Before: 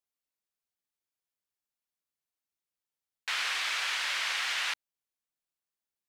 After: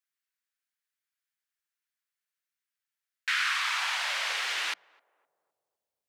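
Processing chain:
mains-hum notches 60/120/180 Hz
high-pass filter sweep 1,600 Hz → 75 Hz, 0:03.32–0:05.90
feedback echo with a band-pass in the loop 257 ms, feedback 54%, band-pass 480 Hz, level −23 dB

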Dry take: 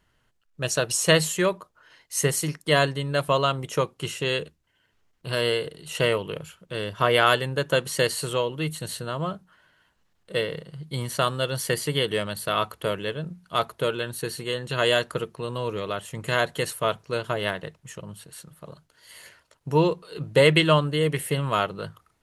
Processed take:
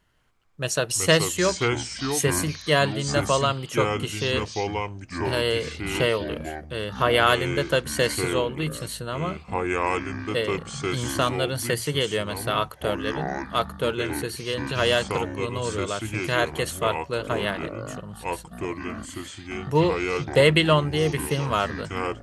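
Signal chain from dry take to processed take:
delay with pitch and tempo change per echo 168 ms, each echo −5 semitones, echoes 3, each echo −6 dB

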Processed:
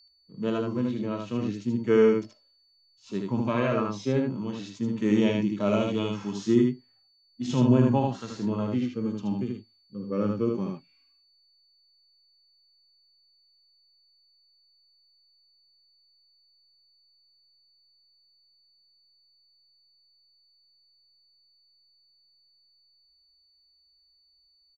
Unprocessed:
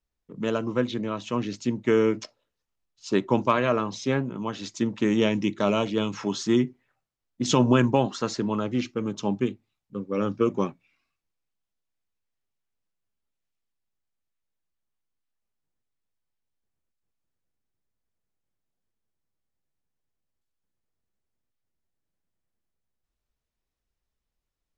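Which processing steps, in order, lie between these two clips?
harmonic and percussive parts rebalanced percussive −17 dB
steady tone 4,500 Hz −56 dBFS
single-tap delay 77 ms −3.5 dB

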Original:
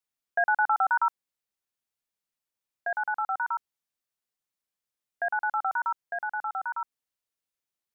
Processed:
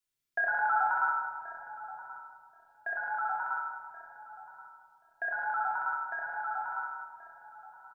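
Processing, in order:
parametric band 850 Hz −7 dB 1.9 octaves
notch filter 700 Hz, Q 17
double-tracking delay 28 ms −7 dB
feedback echo with a low-pass in the loop 1,079 ms, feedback 21%, low-pass 810 Hz, level −11.5 dB
convolution reverb RT60 1.7 s, pre-delay 3 ms, DRR −3.5 dB
level −1.5 dB

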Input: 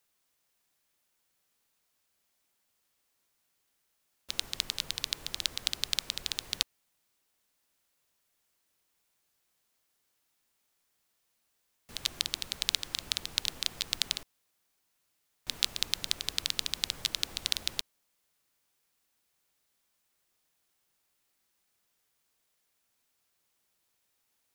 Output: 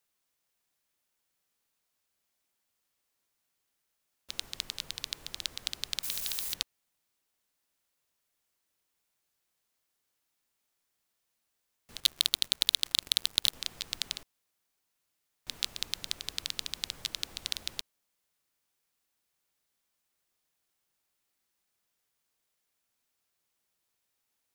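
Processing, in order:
0:06.03–0:06.54: spike at every zero crossing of −26 dBFS
0:12.00–0:13.54: leveller curve on the samples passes 5
level −4 dB

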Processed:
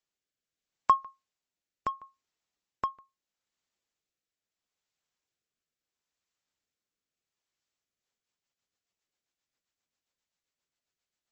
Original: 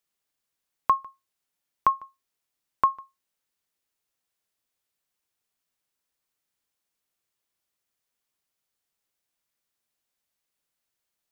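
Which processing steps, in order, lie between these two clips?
harmonic generator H 7 −36 dB, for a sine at −9.5 dBFS
rotating-speaker cabinet horn 0.75 Hz, later 7.5 Hz, at 0:07.64
MP3 32 kbit/s 32,000 Hz

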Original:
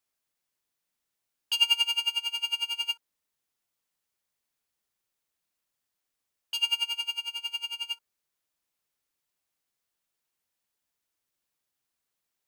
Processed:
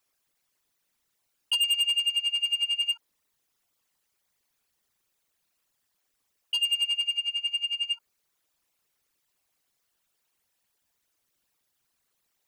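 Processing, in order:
spectral envelope exaggerated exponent 2
soft clipping −27.5 dBFS, distortion −8 dB
level +7 dB

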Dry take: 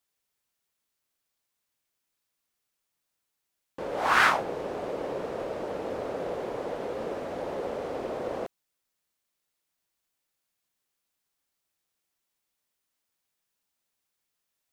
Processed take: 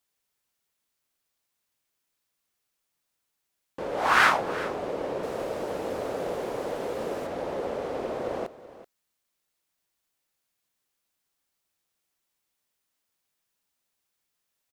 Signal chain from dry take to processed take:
0:05.23–0:07.27: high-shelf EQ 6,500 Hz +11 dB
single-tap delay 380 ms −16 dB
level +1.5 dB

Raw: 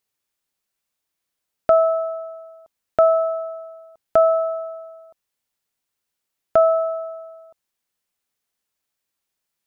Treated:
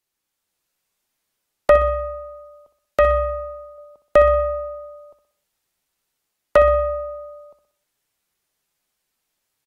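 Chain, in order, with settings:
stylus tracing distortion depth 0.1 ms
0:01.77–0:03.78: parametric band 440 Hz −4.5 dB 2.7 octaves
repeating echo 62 ms, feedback 45%, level −12 dB
frequency shifter −64 Hz
automatic gain control gain up to 4 dB
AAC 48 kbit/s 48,000 Hz

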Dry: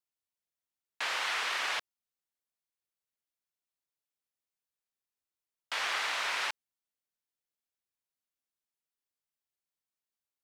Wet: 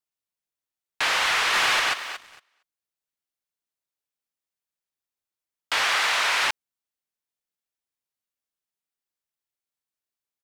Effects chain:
0:01.30–0:01.70: delay throw 230 ms, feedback 25%, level −1 dB
leveller curve on the samples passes 2
0:05.83–0:06.44: low-shelf EQ 200 Hz −10.5 dB
level +4.5 dB

